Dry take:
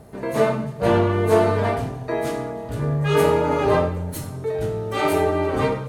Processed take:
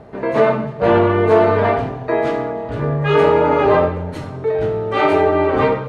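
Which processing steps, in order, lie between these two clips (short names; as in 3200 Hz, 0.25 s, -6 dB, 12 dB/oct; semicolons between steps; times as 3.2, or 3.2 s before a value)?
LPF 5400 Hz 12 dB/oct; tone controls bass -6 dB, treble -12 dB; in parallel at +2.5 dB: limiter -13 dBFS, peak gain reduction 7 dB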